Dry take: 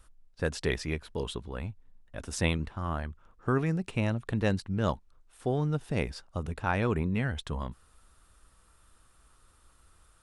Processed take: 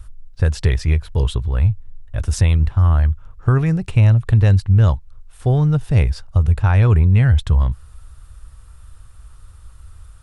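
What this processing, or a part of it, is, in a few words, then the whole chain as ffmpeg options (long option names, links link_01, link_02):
car stereo with a boomy subwoofer: -af "lowshelf=frequency=150:width_type=q:width=1.5:gain=13.5,alimiter=limit=-14dB:level=0:latency=1:release=234,volume=8dB"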